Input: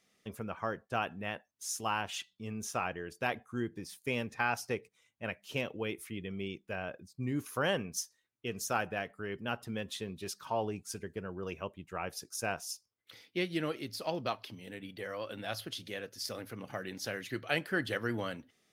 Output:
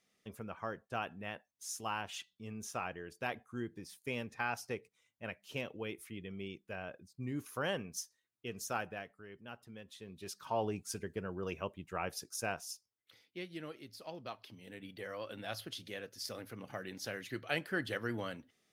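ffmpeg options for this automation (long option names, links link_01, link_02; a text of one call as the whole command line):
ffmpeg -i in.wav -af "volume=15.5dB,afade=type=out:start_time=8.77:duration=0.46:silence=0.398107,afade=type=in:start_time=9.96:duration=0.74:silence=0.223872,afade=type=out:start_time=12.07:duration=1.16:silence=0.281838,afade=type=in:start_time=14.24:duration=0.64:silence=0.421697" out.wav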